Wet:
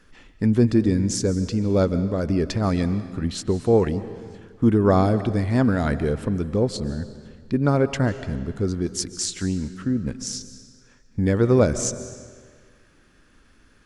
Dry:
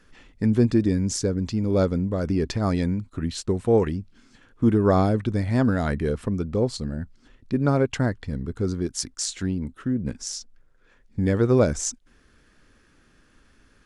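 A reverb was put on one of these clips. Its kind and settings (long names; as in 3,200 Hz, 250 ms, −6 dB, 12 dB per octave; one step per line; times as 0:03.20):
comb and all-pass reverb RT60 1.7 s, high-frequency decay 0.9×, pre-delay 105 ms, DRR 12.5 dB
level +1.5 dB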